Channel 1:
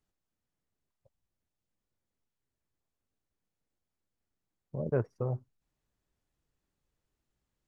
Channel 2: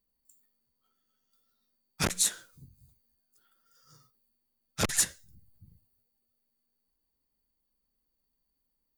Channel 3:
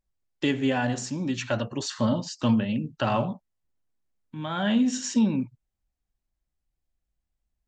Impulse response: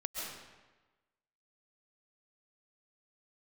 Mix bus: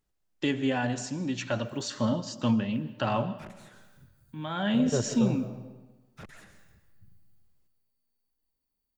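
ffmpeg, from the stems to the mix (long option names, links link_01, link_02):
-filter_complex "[0:a]volume=-2dB,asplit=2[link_01][link_02];[link_02]volume=-4.5dB[link_03];[1:a]acompressor=threshold=-32dB:ratio=6,asoftclip=type=tanh:threshold=-34.5dB,acrossover=split=2700[link_04][link_05];[link_05]acompressor=threshold=-60dB:ratio=4:attack=1:release=60[link_06];[link_04][link_06]amix=inputs=2:normalize=0,adelay=1400,volume=-6.5dB,asplit=2[link_07][link_08];[link_08]volume=-5.5dB[link_09];[2:a]volume=-4dB,asplit=2[link_10][link_11];[link_11]volume=-15dB[link_12];[3:a]atrim=start_sample=2205[link_13];[link_03][link_09][link_12]amix=inputs=3:normalize=0[link_14];[link_14][link_13]afir=irnorm=-1:irlink=0[link_15];[link_01][link_07][link_10][link_15]amix=inputs=4:normalize=0"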